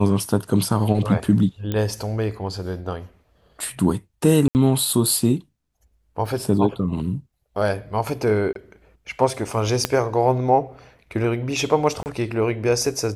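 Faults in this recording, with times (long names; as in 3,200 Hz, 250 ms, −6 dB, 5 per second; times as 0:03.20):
0:01.72: click −12 dBFS
0:04.48–0:04.55: drop-out 69 ms
0:06.26: drop-out 3.3 ms
0:08.53–0:08.55: drop-out 23 ms
0:09.85: click −4 dBFS
0:12.03–0:12.06: drop-out 29 ms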